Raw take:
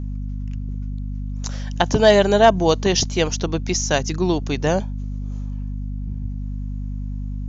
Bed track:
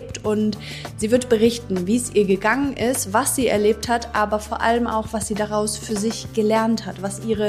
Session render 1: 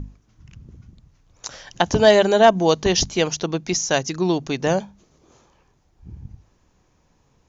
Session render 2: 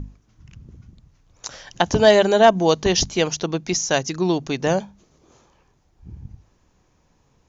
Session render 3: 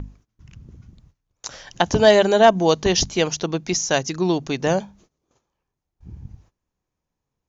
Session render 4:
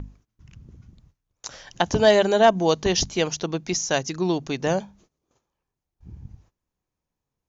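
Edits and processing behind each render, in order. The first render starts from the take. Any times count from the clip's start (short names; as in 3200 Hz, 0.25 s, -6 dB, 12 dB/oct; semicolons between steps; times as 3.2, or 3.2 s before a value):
notches 50/100/150/200/250 Hz
nothing audible
gate -51 dBFS, range -20 dB
gain -3 dB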